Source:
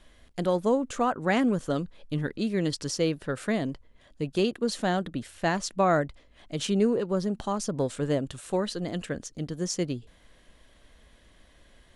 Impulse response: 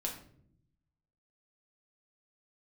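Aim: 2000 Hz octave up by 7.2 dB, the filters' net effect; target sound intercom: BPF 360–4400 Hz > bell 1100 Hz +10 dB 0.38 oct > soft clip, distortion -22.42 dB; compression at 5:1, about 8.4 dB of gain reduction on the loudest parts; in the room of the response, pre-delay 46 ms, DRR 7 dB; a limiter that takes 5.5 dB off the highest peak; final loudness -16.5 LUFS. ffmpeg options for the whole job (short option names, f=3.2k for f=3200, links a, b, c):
-filter_complex "[0:a]equalizer=f=2k:t=o:g=8,acompressor=threshold=-27dB:ratio=5,alimiter=limit=-22.5dB:level=0:latency=1,asplit=2[a][b];[1:a]atrim=start_sample=2205,adelay=46[c];[b][c]afir=irnorm=-1:irlink=0,volume=-8dB[d];[a][d]amix=inputs=2:normalize=0,highpass=360,lowpass=4.4k,equalizer=f=1.1k:t=o:w=0.38:g=10,asoftclip=threshold=-19.5dB,volume=19dB"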